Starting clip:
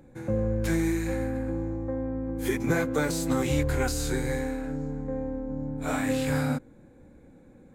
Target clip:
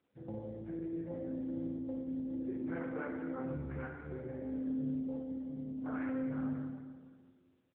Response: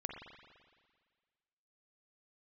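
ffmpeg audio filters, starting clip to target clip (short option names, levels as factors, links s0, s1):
-filter_complex "[0:a]afwtdn=0.0251,asettb=1/sr,asplit=3[s0][s1][s2];[s0]atrim=end=0.794[s3];[s1]atrim=start=0.79:end=1.35,asetpts=PTS-STARTPTS,afade=t=in:d=0.004:c=qsin,afade=t=out:st=0.556:d=0.004:c=qsin,adynamicequalizer=threshold=0.0112:dfrequency=560:dqfactor=0.7:tfrequency=560:tqfactor=0.7:attack=5:release=100:ratio=0.375:range=2:mode=boostabove:tftype=bell[s4];[s2]atrim=start=1.346[s5];[s3][s4]acrossfade=d=0.004:c1=hsin:c2=qsin[s6];[s6][s5]acrossfade=d=0.004:c1=qsin:c2=hsin,asplit=3[s7][s8][s9];[s7]afade=t=out:st=2.82:d=0.02[s10];[s8]highpass=f=200:w=0.5412,highpass=f=200:w=1.3066,afade=t=in:st=2.82:d=0.02,afade=t=out:st=3.37:d=0.02[s11];[s9]afade=t=in:st=3.37:d=0.02[s12];[s10][s11][s12]amix=inputs=3:normalize=0,asettb=1/sr,asplit=3[s13][s14][s15];[s13]atrim=end=4.394[s16];[s14]atrim=start=4.39:end=4.99,asetpts=PTS-STARTPTS,afade=t=in:d=0.004:c=qsin,afade=t=out:st=0.596:d=0.004:c=qsin,acontrast=34[s17];[s15]atrim=start=4.986[s18];[s16][s17]acrossfade=d=0.004:c1=hsin:c2=qsin[s19];[s19][s18]acrossfade=d=0.004:c1=qsin:c2=hsin,alimiter=limit=0.0841:level=0:latency=1:release=152,lowpass=f=1700:t=q:w=1.7,flanger=delay=1.3:depth=2.6:regen=-80:speed=0.93:shape=triangular,asplit=5[s20][s21][s22][s23][s24];[s21]adelay=254,afreqshift=-42,volume=0.0794[s25];[s22]adelay=508,afreqshift=-84,volume=0.0422[s26];[s23]adelay=762,afreqshift=-126,volume=0.0224[s27];[s24]adelay=1016,afreqshift=-168,volume=0.0119[s28];[s20][s25][s26][s27][s28]amix=inputs=5:normalize=0[s29];[1:a]atrim=start_sample=2205[s30];[s29][s30]afir=irnorm=-1:irlink=0,volume=0.668" -ar 8000 -c:a libopencore_amrnb -b:a 6700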